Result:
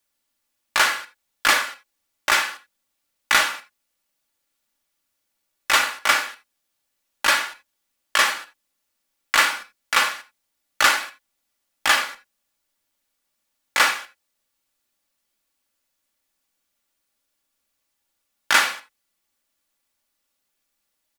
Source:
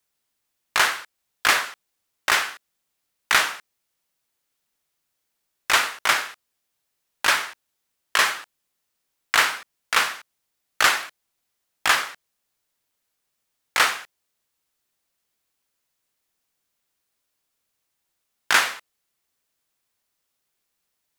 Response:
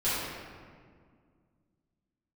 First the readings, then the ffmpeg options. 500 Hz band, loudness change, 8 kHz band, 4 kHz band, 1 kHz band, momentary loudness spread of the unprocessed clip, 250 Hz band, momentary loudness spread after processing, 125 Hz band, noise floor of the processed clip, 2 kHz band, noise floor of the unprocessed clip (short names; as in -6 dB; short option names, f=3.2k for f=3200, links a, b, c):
+1.5 dB, +1.0 dB, +1.0 dB, +1.5 dB, +1.5 dB, 15 LU, +2.5 dB, 14 LU, n/a, -77 dBFS, +1.0 dB, -78 dBFS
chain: -filter_complex "[0:a]aecho=1:1:3.5:0.49,asplit=2[a][b];[1:a]atrim=start_sample=2205,afade=t=out:st=0.14:d=0.01,atrim=end_sample=6615[c];[b][c]afir=irnorm=-1:irlink=0,volume=-16.5dB[d];[a][d]amix=inputs=2:normalize=0,volume=-1dB"